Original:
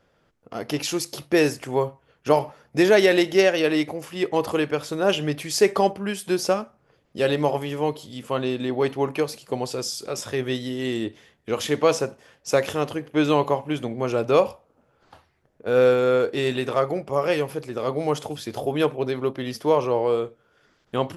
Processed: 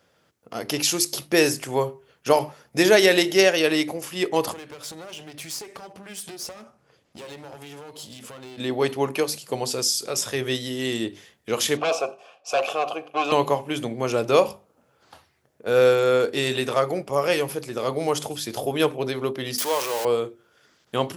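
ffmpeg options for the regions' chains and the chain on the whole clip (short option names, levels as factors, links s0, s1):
-filter_complex "[0:a]asettb=1/sr,asplit=3[s0][s1][s2];[s0]atrim=end=4.524[s3];[s1]atrim=start=4.52:end=8.58,asetpts=PTS-STARTPTS,afade=t=in:d=0.004:c=qsin,afade=t=out:st=4.056:d=0.004:c=qsin,lowpass=11000,acompressor=threshold=0.0178:ratio=5:attack=3.2:release=140:knee=1:detection=peak,aeval=exprs='clip(val(0),-1,0.00794)':c=same[s4];[s2]atrim=start=8.576[s5];[s3][s4]acrossfade=d=0.004:c1=hsin:c2=qsin[s6];[s6][s5]acrossfade=d=0.004:c1=qsin:c2=hsin,asettb=1/sr,asplit=3[s7][s8][s9];[s7]atrim=end=11.774[s10];[s8]atrim=start=11.77:end=13.32,asetpts=PTS-STARTPTS,afade=t=in:d=0.004:c=qsin,afade=t=out:st=1.546:d=0.004:c=qsin,bass=f=250:g=-2,treble=f=4000:g=3,aeval=exprs='0.501*sin(PI/2*3.55*val(0)/0.501)':c=same,asplit=3[s11][s12][s13];[s11]bandpass=f=730:t=q:w=8,volume=1[s14];[s12]bandpass=f=1090:t=q:w=8,volume=0.501[s15];[s13]bandpass=f=2440:t=q:w=8,volume=0.355[s16];[s14][s15][s16]amix=inputs=3:normalize=0[s17];[s9]atrim=start=13.316[s18];[s10][s17]acrossfade=d=0.004:c1=hsin:c2=qsin[s19];[s19][s18]acrossfade=d=0.004:c1=qsin:c2=hsin,asettb=1/sr,asplit=3[s20][s21][s22];[s20]atrim=end=19.584[s23];[s21]atrim=start=19.58:end=20.05,asetpts=PTS-STARTPTS,afade=t=in:d=0.004:c=qsin,afade=t=out:st=0.466:d=0.004:c=qsin,aeval=exprs='val(0)+0.5*0.0473*sgn(val(0))':c=same,highpass=f=1100:p=1[s24];[s22]atrim=start=20.046[s25];[s23][s24]acrossfade=d=0.004:c1=hsin:c2=qsin[s26];[s26][s25]acrossfade=d=0.004:c1=qsin:c2=hsin,highpass=79,highshelf=f=3700:g=10.5,bandreject=f=50:t=h:w=6,bandreject=f=100:t=h:w=6,bandreject=f=150:t=h:w=6,bandreject=f=200:t=h:w=6,bandreject=f=250:t=h:w=6,bandreject=f=300:t=h:w=6,bandreject=f=350:t=h:w=6,bandreject=f=400:t=h:w=6"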